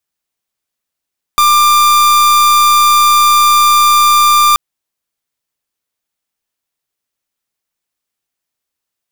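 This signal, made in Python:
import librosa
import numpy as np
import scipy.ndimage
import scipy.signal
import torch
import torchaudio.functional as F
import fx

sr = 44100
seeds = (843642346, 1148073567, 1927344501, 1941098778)

y = fx.pulse(sr, length_s=3.18, hz=1190.0, level_db=-8.0, duty_pct=44)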